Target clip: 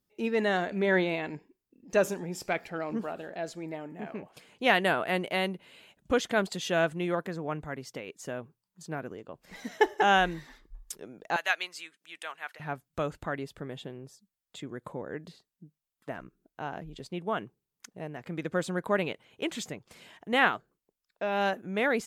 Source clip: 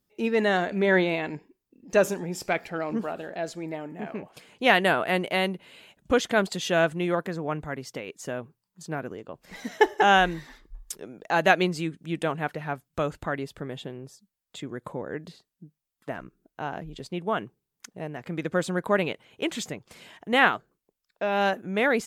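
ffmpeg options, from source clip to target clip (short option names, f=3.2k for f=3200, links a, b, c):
-filter_complex "[0:a]asettb=1/sr,asplit=3[a][b][c];[a]atrim=end=11.364[d];[b]atrim=start=11.36:end=12.6,asetpts=PTS-STARTPTS,afade=t=in:d=0.004:c=qsin,afade=t=out:st=1.236:d=0.004:c=qsin,highpass=1.3k[e];[c]atrim=start=12.596[f];[d][e]acrossfade=d=0.004:c1=hsin:c2=qsin[g];[g][f]acrossfade=d=0.004:c1=qsin:c2=hsin,volume=-4dB"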